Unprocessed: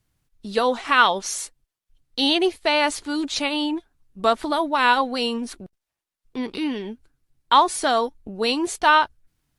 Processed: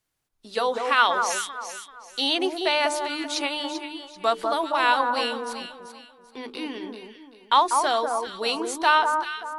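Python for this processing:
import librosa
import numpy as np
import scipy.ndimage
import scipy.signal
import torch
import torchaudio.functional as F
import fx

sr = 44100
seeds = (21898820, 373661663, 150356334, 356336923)

y = fx.bass_treble(x, sr, bass_db=-13, treble_db=1)
y = fx.hum_notches(y, sr, base_hz=50, count=9)
y = fx.echo_alternate(y, sr, ms=194, hz=1400.0, feedback_pct=55, wet_db=-4)
y = F.gain(torch.from_numpy(y), -3.0).numpy()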